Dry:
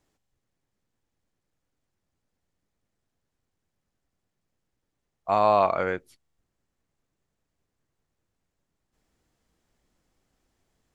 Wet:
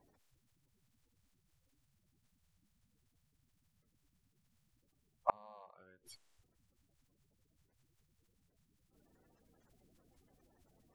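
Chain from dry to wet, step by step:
spectral magnitudes quantised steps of 30 dB
gate with flip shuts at −17 dBFS, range −39 dB
level +3 dB

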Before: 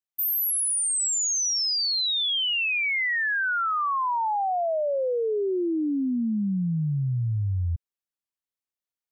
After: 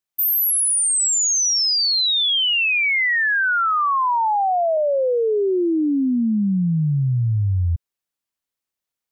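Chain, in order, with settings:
0:04.77–0:06.99: low-pass filter 1,700 Hz 12 dB per octave
level +6.5 dB

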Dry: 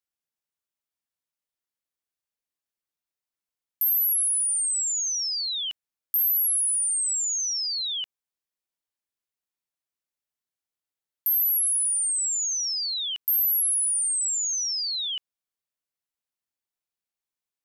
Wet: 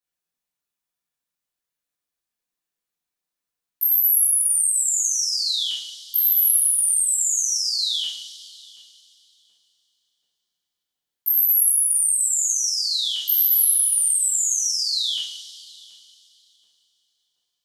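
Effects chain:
0:12.49–0:13.96: Butterworth high-pass 210 Hz 36 dB per octave
tape delay 729 ms, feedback 53%, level −14 dB, low-pass 1,100 Hz
coupled-rooms reverb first 0.64 s, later 3.2 s, from −18 dB, DRR −7.5 dB
level −3.5 dB

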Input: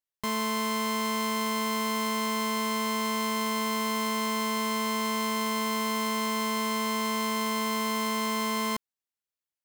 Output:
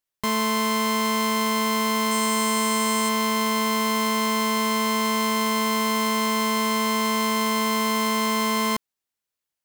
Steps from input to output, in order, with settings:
0:02.11–0:03.09: parametric band 8,300 Hz +10 dB 0.4 octaves
level +6 dB

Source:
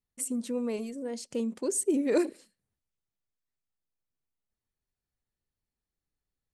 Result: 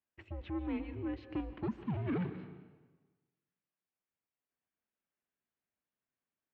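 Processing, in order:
0:01.82–0:02.31: variable-slope delta modulation 32 kbit/s
brickwall limiter −24 dBFS, peak gain reduction 8.5 dB
soft clipping −30 dBFS, distortion −15 dB
on a send at −11.5 dB: convolution reverb RT60 1.3 s, pre-delay 105 ms
on the sum: single-sideband voice off tune −170 Hz 310–3,100 Hz
level +1 dB

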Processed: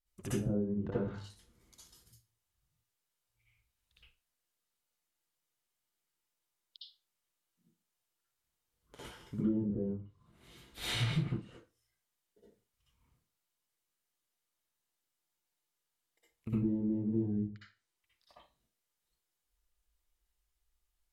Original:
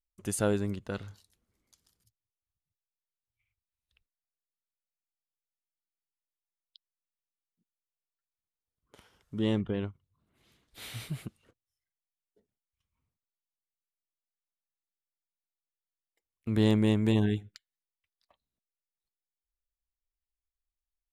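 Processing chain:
treble cut that deepens with the level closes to 340 Hz, closed at −29 dBFS
downward compressor 6 to 1, threshold −39 dBFS, peak gain reduction 17 dB
convolution reverb RT60 0.30 s, pre-delay 53 ms, DRR −9 dB

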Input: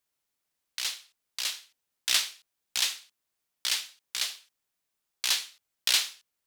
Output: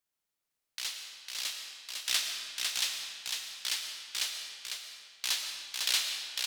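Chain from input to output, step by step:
single-tap delay 502 ms −4 dB
on a send at −5 dB: convolution reverb RT60 1.9 s, pre-delay 70 ms
on the sum: level −5 dB

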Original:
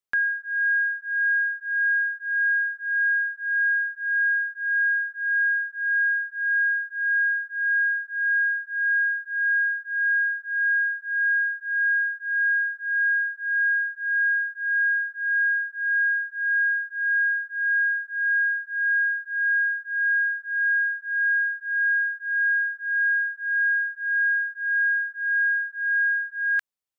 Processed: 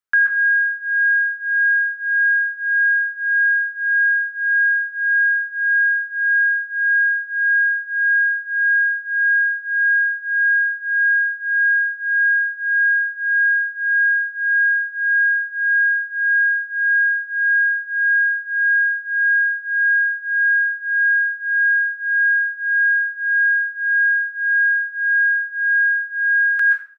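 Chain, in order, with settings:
parametric band 1,500 Hz +11 dB 0.65 octaves
single-tap delay 79 ms −15.5 dB
convolution reverb RT60 0.45 s, pre-delay 119 ms, DRR 4 dB
level −1.5 dB

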